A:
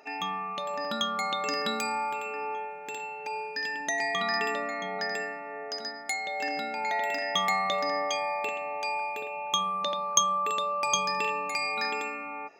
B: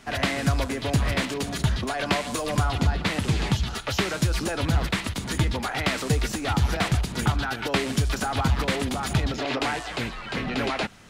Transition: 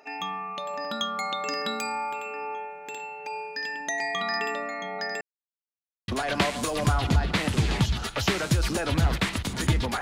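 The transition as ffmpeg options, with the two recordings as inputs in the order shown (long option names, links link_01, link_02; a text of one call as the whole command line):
ffmpeg -i cue0.wav -i cue1.wav -filter_complex "[0:a]apad=whole_dur=10.01,atrim=end=10.01,asplit=2[link_01][link_02];[link_01]atrim=end=5.21,asetpts=PTS-STARTPTS,afade=type=out:start_time=5.206:duration=0.004:curve=hsin[link_03];[link_02]atrim=start=5.21:end=6.08,asetpts=PTS-STARTPTS,volume=0[link_04];[1:a]atrim=start=1.79:end=5.72,asetpts=PTS-STARTPTS,afade=type=in:duration=0.004:curve=hsin[link_05];[link_03][link_04][link_05]concat=n=3:v=0:a=1" out.wav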